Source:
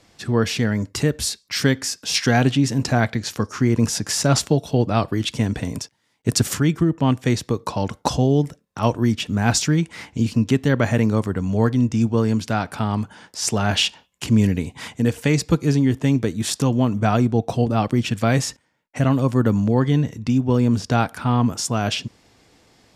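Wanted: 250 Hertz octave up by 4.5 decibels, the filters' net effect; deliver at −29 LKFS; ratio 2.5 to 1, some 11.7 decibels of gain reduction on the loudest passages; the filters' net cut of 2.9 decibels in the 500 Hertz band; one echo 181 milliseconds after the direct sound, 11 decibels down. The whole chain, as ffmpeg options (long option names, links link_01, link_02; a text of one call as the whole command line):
ffmpeg -i in.wav -af "equalizer=frequency=250:width_type=o:gain=6.5,equalizer=frequency=500:width_type=o:gain=-6,acompressor=threshold=-28dB:ratio=2.5,aecho=1:1:181:0.282,volume=-1dB" out.wav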